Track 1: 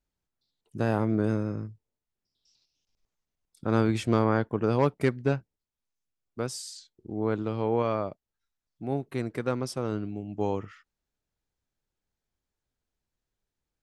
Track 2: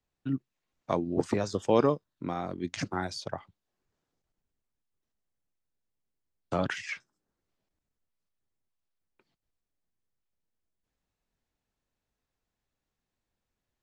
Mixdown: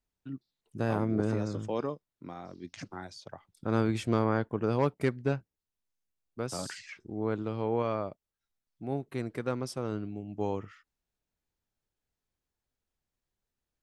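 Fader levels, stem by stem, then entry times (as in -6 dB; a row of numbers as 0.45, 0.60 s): -3.5, -9.5 dB; 0.00, 0.00 s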